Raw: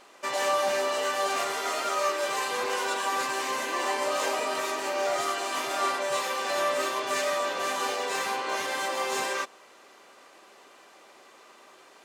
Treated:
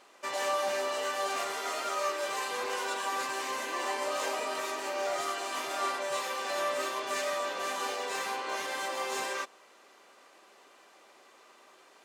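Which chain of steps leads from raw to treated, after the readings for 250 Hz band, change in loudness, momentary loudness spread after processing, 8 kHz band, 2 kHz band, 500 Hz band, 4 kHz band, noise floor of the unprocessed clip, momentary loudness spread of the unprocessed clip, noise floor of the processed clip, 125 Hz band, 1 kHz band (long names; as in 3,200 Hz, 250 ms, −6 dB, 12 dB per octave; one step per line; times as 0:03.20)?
−5.5 dB, −4.5 dB, 3 LU, −4.5 dB, −4.5 dB, −5.0 dB, −4.5 dB, −54 dBFS, 3 LU, −59 dBFS, can't be measured, −4.5 dB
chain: high-pass filter 150 Hz 6 dB per octave
level −4.5 dB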